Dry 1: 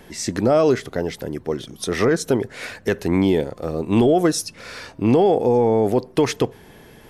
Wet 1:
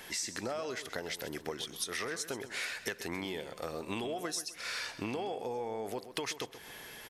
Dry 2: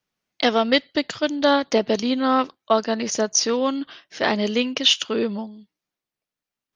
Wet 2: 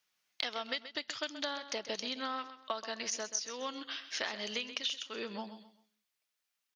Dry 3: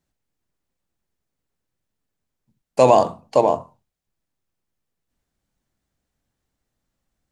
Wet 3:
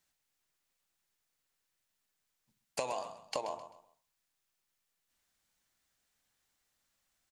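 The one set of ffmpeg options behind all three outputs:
-af "tiltshelf=f=690:g=-9.5,acompressor=threshold=0.0355:ratio=12,aecho=1:1:130|260|390:0.237|0.0759|0.0243,volume=0.562"

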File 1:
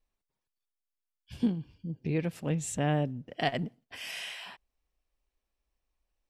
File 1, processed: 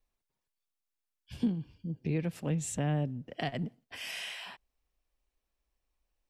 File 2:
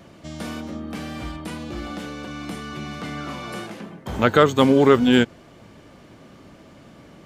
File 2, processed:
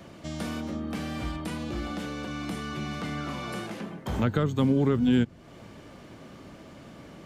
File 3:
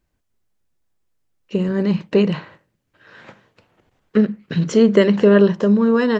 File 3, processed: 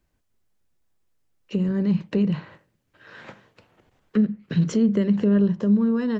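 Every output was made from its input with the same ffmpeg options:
-filter_complex "[0:a]acrossover=split=230[s0][s1];[s1]acompressor=threshold=0.02:ratio=3[s2];[s0][s2]amix=inputs=2:normalize=0"

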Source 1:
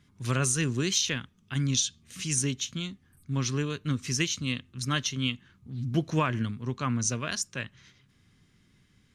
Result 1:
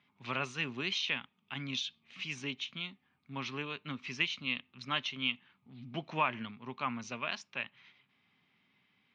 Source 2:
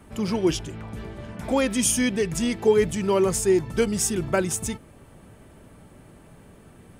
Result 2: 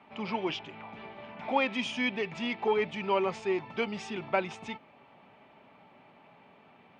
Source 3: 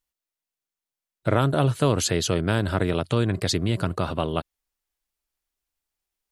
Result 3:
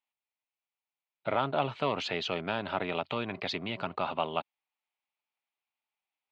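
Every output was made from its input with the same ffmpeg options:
-af "acontrast=77,highpass=320,equalizer=f=330:t=q:w=4:g=-9,equalizer=f=480:t=q:w=4:g=-7,equalizer=f=850:t=q:w=4:g=6,equalizer=f=1600:t=q:w=4:g=-6,equalizer=f=2400:t=q:w=4:g=6,lowpass=f=3600:w=0.5412,lowpass=f=3600:w=1.3066,volume=0.355"

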